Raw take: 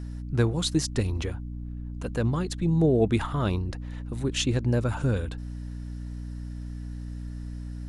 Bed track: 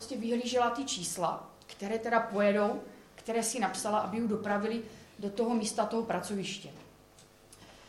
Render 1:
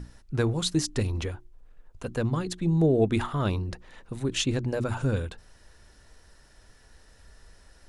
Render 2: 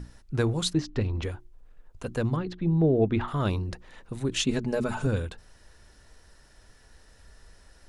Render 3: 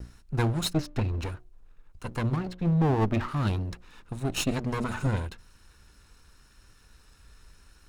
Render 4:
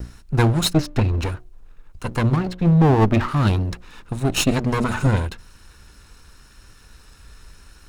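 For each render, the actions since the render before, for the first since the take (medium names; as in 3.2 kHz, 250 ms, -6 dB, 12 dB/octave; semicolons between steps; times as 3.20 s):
hum notches 60/120/180/240/300/360 Hz
0.73–1.23 s: distance through air 210 m; 2.36–3.28 s: distance through air 260 m; 4.46–5.07 s: comb 4.7 ms
comb filter that takes the minimum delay 0.75 ms; vibrato 0.94 Hz 19 cents
trim +9 dB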